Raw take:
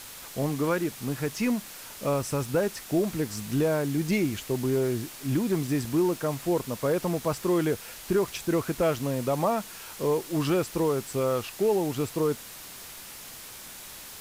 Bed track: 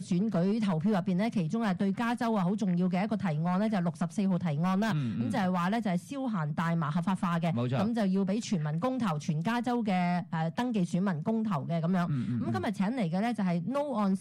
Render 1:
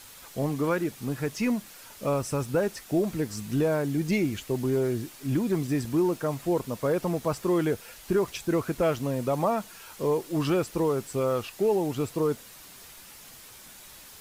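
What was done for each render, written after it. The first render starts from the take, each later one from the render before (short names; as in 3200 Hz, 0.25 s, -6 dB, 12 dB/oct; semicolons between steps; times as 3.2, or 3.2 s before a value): denoiser 6 dB, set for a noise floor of -44 dBFS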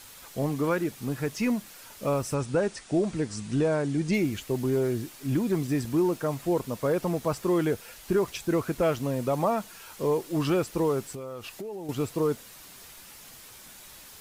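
2.34–4.14 brick-wall FIR low-pass 9900 Hz; 11–11.89 compressor 8:1, threshold -34 dBFS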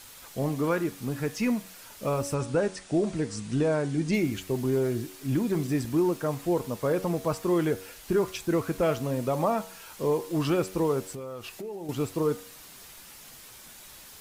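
de-hum 93.91 Hz, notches 28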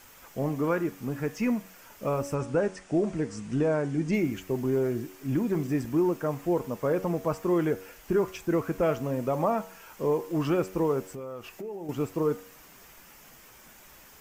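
fifteen-band EQ 100 Hz -5 dB, 4000 Hz -11 dB, 10000 Hz -11 dB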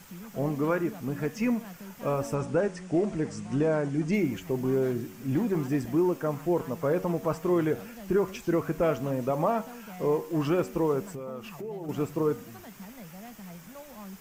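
add bed track -15.5 dB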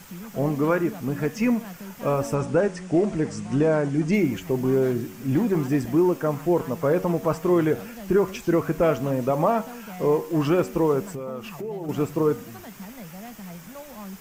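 gain +5 dB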